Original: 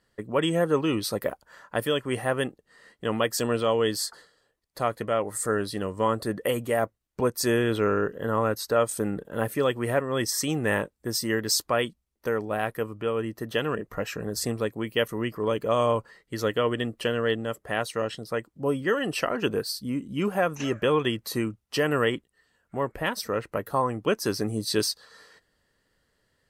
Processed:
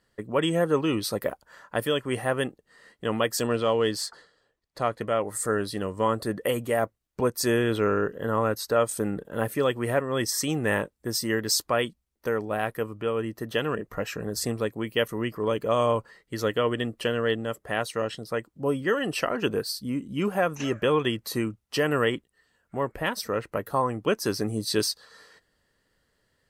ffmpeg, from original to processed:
-filter_complex "[0:a]asettb=1/sr,asplit=3[a][b][c];[a]atrim=end=3.474[d];[b]atrim=start=3.47:end=5.01,asetpts=PTS-STARTPTS,afade=t=in:d=0.004:c=qsin,afade=t=out:st=1.536:d=0.004:c=qsin,adynamicsmooth=sensitivity=6:basefreq=7.6k[e];[c]atrim=start=5.006[f];[d][e]acrossfade=d=0.004:c1=hsin:c2=qsin[g];[g][f]acrossfade=d=0.004:c1=qsin:c2=hsin"

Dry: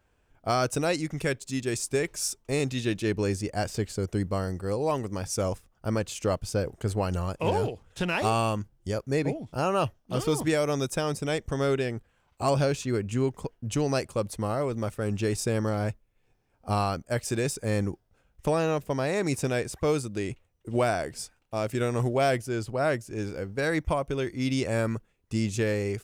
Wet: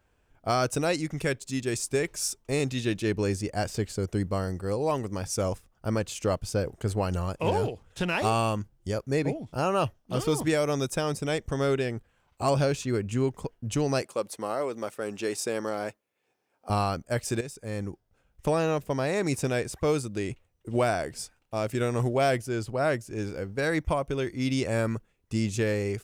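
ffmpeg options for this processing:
-filter_complex "[0:a]asettb=1/sr,asplit=3[a][b][c];[a]atrim=end=14.024[d];[b]atrim=start=14.02:end=16.7,asetpts=PTS-STARTPTS,afade=t=in:d=0.004:c=qsin,afade=t=out:st=2.676:d=0.004:c=qsin,highpass=320[e];[c]atrim=start=16.696[f];[d][e]acrossfade=d=0.004:c1=hsin:c2=qsin[g];[g][f]acrossfade=d=0.004:c1=qsin:c2=hsin,asplit=2[h][i];[h]atrim=end=17.41,asetpts=PTS-STARTPTS,afade=t=out:st=17.406:d=0.004:c=hsin:silence=0.237137[j];[i]atrim=start=17.41,asetpts=PTS-STARTPTS,afade=t=in:d=1.08:silence=0.237137[k];[j][k]concat=n=2:v=0:a=1"

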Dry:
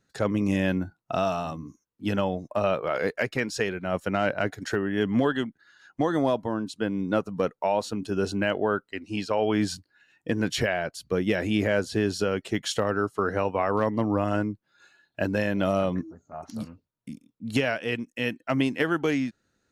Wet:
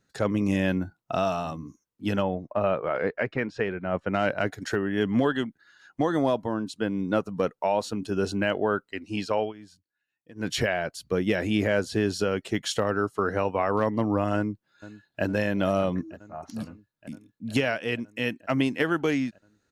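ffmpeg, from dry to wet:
-filter_complex "[0:a]asplit=3[a][b][c];[a]afade=t=out:st=2.22:d=0.02[d];[b]lowpass=2.2k,afade=t=in:st=2.22:d=0.02,afade=t=out:st=4.12:d=0.02[e];[c]afade=t=in:st=4.12:d=0.02[f];[d][e][f]amix=inputs=3:normalize=0,asplit=2[g][h];[h]afade=t=in:st=14.36:d=0.01,afade=t=out:st=15.24:d=0.01,aecho=0:1:460|920|1380|1840|2300|2760|3220|3680|4140|4600|5060|5520:0.149624|0.119699|0.0957591|0.0766073|0.0612858|0.0490286|0.0392229|0.0313783|0.0251027|0.0200821|0.0160657|0.0128526[i];[g][i]amix=inputs=2:normalize=0,asplit=3[j][k][l];[j]atrim=end=9.53,asetpts=PTS-STARTPTS,afade=t=out:st=9.38:d=0.15:silence=0.0794328[m];[k]atrim=start=9.53:end=10.35,asetpts=PTS-STARTPTS,volume=-22dB[n];[l]atrim=start=10.35,asetpts=PTS-STARTPTS,afade=t=in:d=0.15:silence=0.0794328[o];[m][n][o]concat=n=3:v=0:a=1"

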